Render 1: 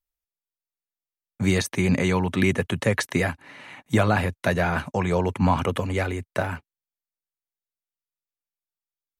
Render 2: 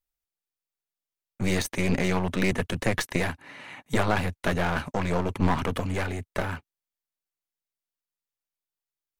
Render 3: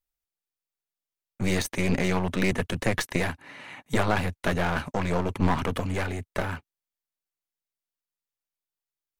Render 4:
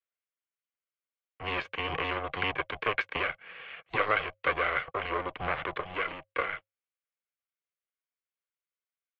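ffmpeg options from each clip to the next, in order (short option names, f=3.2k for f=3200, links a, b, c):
-af "aeval=exprs='clip(val(0),-1,0.0237)':c=same"
-af anull
-af "afreqshift=220,highpass=f=480:w=0.5412,highpass=f=480:w=1.3066,equalizer=f=550:t=q:w=4:g=-8,equalizer=f=830:t=q:w=4:g=9,equalizer=f=1.2k:t=q:w=4:g=-7,equalizer=f=1.8k:t=q:w=4:g=10,equalizer=f=2.8k:t=q:w=4:g=6,lowpass=f=3k:w=0.5412,lowpass=f=3k:w=1.3066,aeval=exprs='val(0)*sin(2*PI*320*n/s)':c=same,volume=-2.5dB"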